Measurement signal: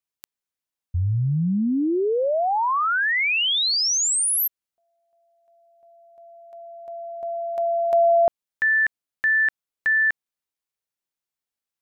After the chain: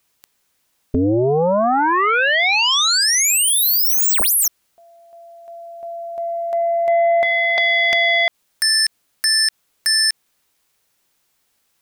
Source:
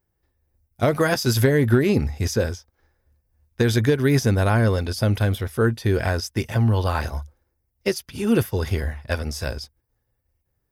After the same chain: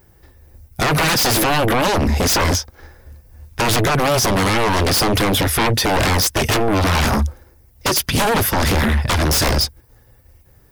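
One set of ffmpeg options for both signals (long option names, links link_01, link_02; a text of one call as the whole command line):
ffmpeg -i in.wav -af "acompressor=threshold=-24dB:ratio=16:attack=5.3:release=123:knee=1:detection=rms,aeval=exprs='0.224*sin(PI/2*8.91*val(0)/0.224)':channel_layout=same" out.wav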